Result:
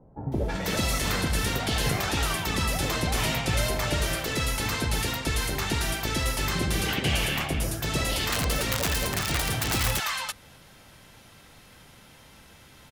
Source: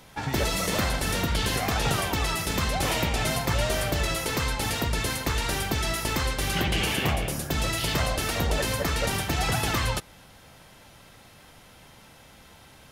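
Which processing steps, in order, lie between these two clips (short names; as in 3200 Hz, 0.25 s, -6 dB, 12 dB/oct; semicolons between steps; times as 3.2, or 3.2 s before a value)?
8–9.67 wrapped overs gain 18.5 dB; bands offset in time lows, highs 0.32 s, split 740 Hz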